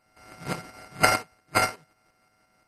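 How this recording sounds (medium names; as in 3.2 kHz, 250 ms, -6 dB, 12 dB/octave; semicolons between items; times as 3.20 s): a buzz of ramps at a fixed pitch in blocks of 32 samples; tremolo saw up 5.7 Hz, depth 50%; aliases and images of a low sample rate 3.5 kHz, jitter 0%; MP2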